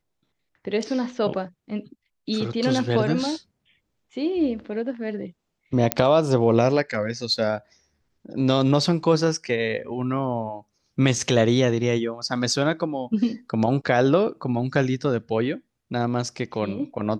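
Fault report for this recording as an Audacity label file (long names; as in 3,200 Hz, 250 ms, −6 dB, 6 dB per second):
5.920000	5.920000	click −2 dBFS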